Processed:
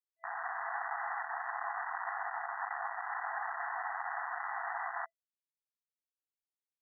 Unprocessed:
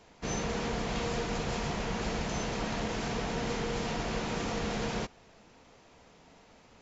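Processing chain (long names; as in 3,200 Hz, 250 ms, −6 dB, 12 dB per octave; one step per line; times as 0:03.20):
echo with a time of its own for lows and highs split 1,300 Hz, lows 133 ms, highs 420 ms, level −13.5 dB
frequency shifter +120 Hz
bit reduction 5 bits
brick-wall band-pass 660–2,000 Hz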